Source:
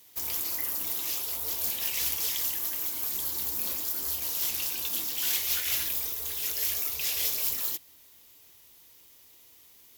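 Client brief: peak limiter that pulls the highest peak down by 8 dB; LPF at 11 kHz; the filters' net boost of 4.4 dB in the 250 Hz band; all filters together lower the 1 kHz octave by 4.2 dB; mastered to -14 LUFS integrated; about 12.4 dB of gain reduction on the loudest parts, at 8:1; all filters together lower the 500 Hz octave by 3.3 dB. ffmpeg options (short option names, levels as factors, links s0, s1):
-af "lowpass=11000,equalizer=f=250:t=o:g=8,equalizer=f=500:t=o:g=-6,equalizer=f=1000:t=o:g=-4,acompressor=threshold=0.00891:ratio=8,volume=29.9,alimiter=limit=0.501:level=0:latency=1"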